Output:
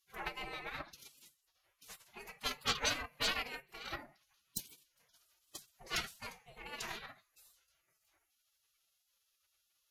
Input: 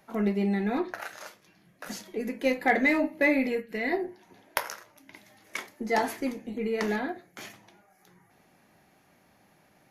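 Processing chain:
harmonic generator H 7 −20 dB, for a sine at −6.5 dBFS
gate on every frequency bin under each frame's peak −20 dB weak
phase-vocoder pitch shift with formants kept +4.5 semitones
level +5.5 dB

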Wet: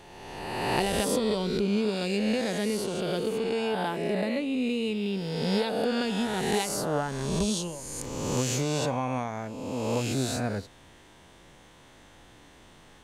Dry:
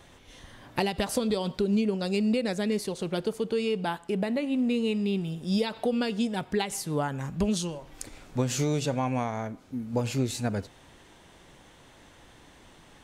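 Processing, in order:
peak hold with a rise ahead of every peak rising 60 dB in 1.67 s
level −3 dB

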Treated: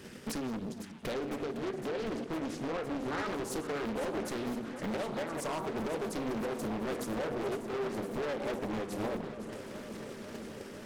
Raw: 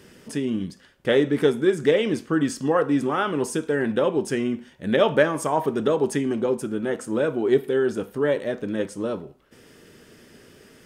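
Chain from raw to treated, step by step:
delay that plays each chunk backwards 102 ms, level −13 dB
parametric band 220 Hz +4.5 dB 0.22 octaves
mains-hum notches 60/120/180/240/300/360/420/480 Hz
transient designer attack +11 dB, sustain −4 dB
downward compressor 5 to 1, threshold −23 dBFS, peak gain reduction 16 dB
brickwall limiter −17 dBFS, peak gain reduction 7 dB
hard clipping −33 dBFS, distortion −5 dB
0:01.14–0:03.26: high-frequency loss of the air 75 metres
delay that swaps between a low-pass and a high-pass 254 ms, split 900 Hz, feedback 89%, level −10.5 dB
highs frequency-modulated by the lows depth 0.85 ms

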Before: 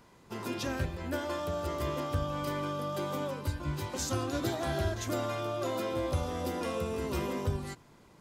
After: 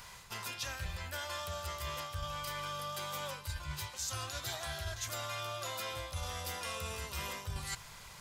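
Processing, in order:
guitar amp tone stack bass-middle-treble 10-0-10
reversed playback
downward compressor 6 to 1, threshold −55 dBFS, peak gain reduction 19.5 dB
reversed playback
level +17 dB

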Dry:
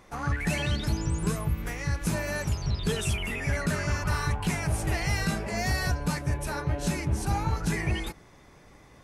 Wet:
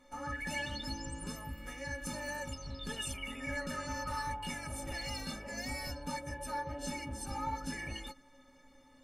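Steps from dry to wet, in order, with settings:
stiff-string resonator 260 Hz, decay 0.22 s, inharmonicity 0.03
level +5.5 dB

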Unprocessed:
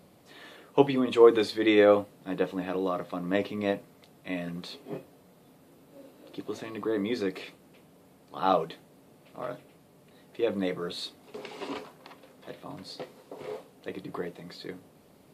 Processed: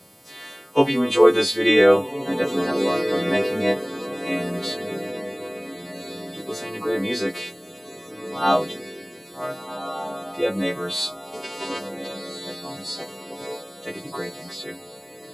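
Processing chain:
every partial snapped to a pitch grid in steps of 2 semitones
feedback delay with all-pass diffusion 1,473 ms, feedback 41%, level −8.5 dB
level +5.5 dB

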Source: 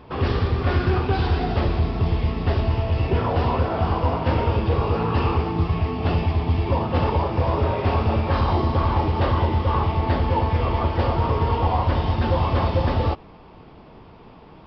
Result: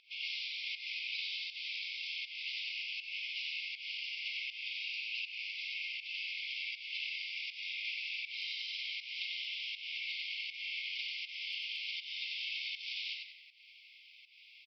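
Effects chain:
linear-phase brick-wall high-pass 2,100 Hz
downward compressor, threshold −41 dBFS, peak gain reduction 7.5 dB
on a send: echo with shifted repeats 92 ms, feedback 39%, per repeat −52 Hz, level −3.5 dB
on the sum: fake sidechain pumping 80 BPM, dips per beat 1, −13 dB, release 236 ms
level +3 dB

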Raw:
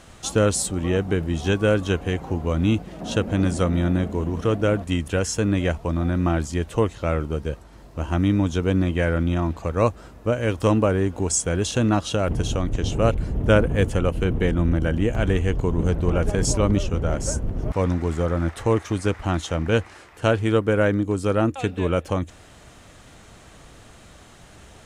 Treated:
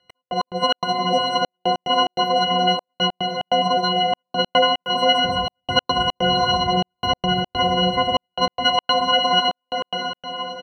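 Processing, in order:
every partial snapped to a pitch grid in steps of 6 semitones
low-pass filter 1,600 Hz 24 dB per octave
noise gate with hold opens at −35 dBFS
high-pass filter 75 Hz 6 dB per octave
comb filter 3.9 ms, depth 72%
feedback delay with all-pass diffusion 1,411 ms, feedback 43%, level −3 dB
gate pattern "x..x.xx.xxxxx" 62 BPM −60 dB
wrong playback speed 33 rpm record played at 78 rpm

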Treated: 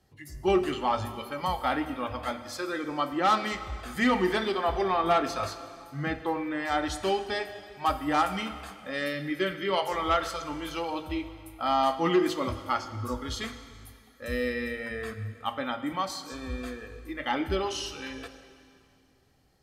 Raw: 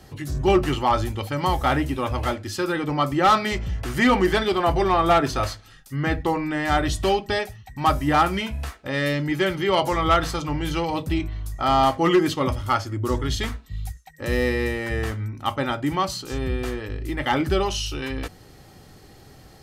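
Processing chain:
0:08.01–0:09.04: dynamic equaliser 7,200 Hz, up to +4 dB, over −44 dBFS, Q 1.3
noise reduction from a noise print of the clip's start 13 dB
dense smooth reverb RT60 2.4 s, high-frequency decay 0.95×, pre-delay 0 ms, DRR 9.5 dB
level −6.5 dB

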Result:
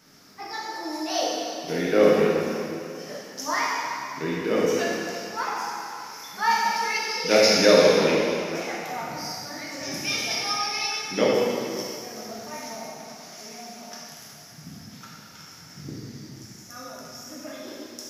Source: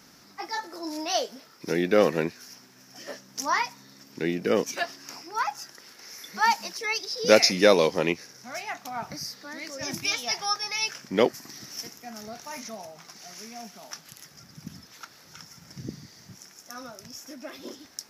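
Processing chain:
dense smooth reverb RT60 2.6 s, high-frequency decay 0.9×, DRR −6.5 dB
level −5 dB

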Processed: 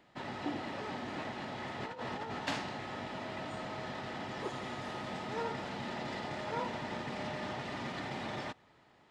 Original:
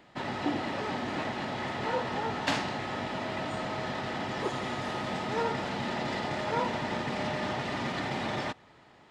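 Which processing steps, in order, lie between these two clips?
0:01.80–0:02.39: compressor whose output falls as the input rises −33 dBFS, ratio −0.5
level −7 dB

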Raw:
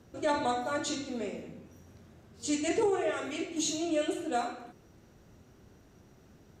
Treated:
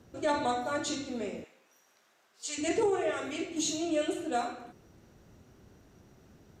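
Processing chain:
0:01.44–0:02.58: high-pass filter 950 Hz 12 dB per octave

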